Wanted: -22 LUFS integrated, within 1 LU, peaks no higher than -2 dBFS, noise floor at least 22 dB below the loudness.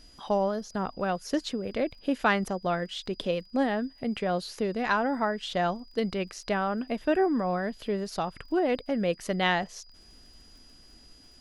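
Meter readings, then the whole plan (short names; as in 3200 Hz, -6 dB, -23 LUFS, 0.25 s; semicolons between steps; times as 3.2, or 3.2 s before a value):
ticks 26/s; steady tone 4900 Hz; tone level -55 dBFS; loudness -29.5 LUFS; peak -11.0 dBFS; loudness target -22.0 LUFS
-> de-click; notch 4900 Hz, Q 30; gain +7.5 dB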